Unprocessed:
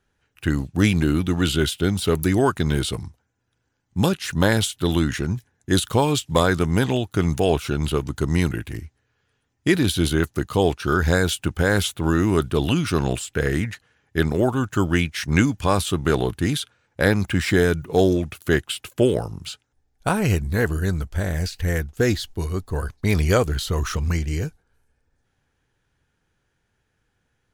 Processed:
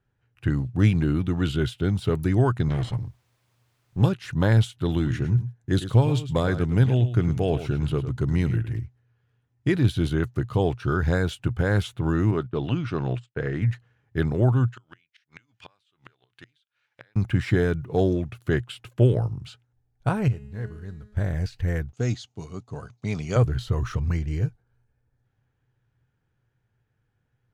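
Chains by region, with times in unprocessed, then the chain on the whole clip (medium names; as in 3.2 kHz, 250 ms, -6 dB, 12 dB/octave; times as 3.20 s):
2.69–4.03 s: comb filter that takes the minimum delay 0.98 ms + low-pass 7.9 kHz + word length cut 10-bit, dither triangular
4.88–8.79 s: dynamic bell 1 kHz, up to -5 dB, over -36 dBFS, Q 1.9 + delay 106 ms -12 dB
12.31–13.62 s: gate -30 dBFS, range -25 dB + high-pass 210 Hz 6 dB/octave + distance through air 110 m
14.71–17.16 s: band-pass filter 3.2 kHz, Q 0.97 + inverted gate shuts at -21 dBFS, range -30 dB + tape noise reduction on one side only encoder only
20.28–21.17 s: CVSD coder 64 kbps + feedback comb 210 Hz, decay 1.1 s, mix 80%
21.93–23.36 s: block-companded coder 7-bit + cabinet simulation 190–9100 Hz, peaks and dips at 340 Hz -8 dB, 500 Hz -5 dB, 990 Hz -4 dB, 1.7 kHz -10 dB, 6.5 kHz +9 dB
whole clip: low-pass 2.1 kHz 6 dB/octave; peaking EQ 120 Hz +15 dB 0.41 oct; trim -5 dB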